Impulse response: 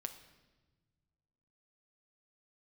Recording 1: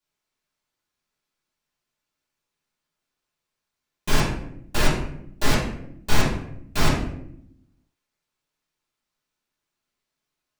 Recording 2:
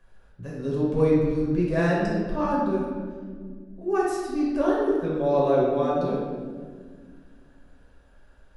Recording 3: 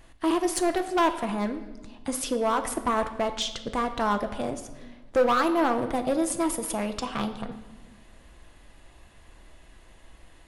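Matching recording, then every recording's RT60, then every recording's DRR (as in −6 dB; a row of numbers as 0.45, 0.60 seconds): 3; 0.75, 1.8, 1.3 seconds; −10.5, −6.0, 7.0 decibels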